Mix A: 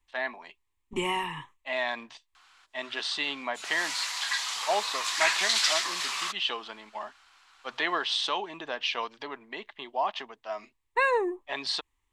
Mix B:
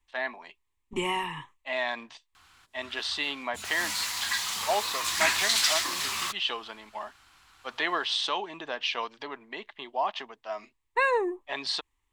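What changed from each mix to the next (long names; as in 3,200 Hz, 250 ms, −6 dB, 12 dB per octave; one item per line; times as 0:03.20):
background: remove band-pass filter 540–7,700 Hz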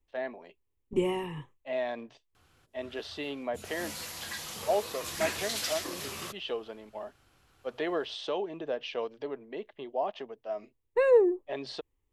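first voice: add high-frequency loss of the air 51 metres
background: add linear-phase brick-wall low-pass 13,000 Hz
master: add graphic EQ with 10 bands 125 Hz +6 dB, 500 Hz +10 dB, 1,000 Hz −11 dB, 2,000 Hz −7 dB, 4,000 Hz −8 dB, 8,000 Hz −8 dB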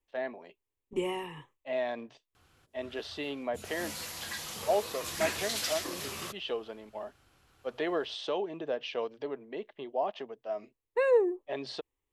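second voice: add low-shelf EQ 280 Hz −11.5 dB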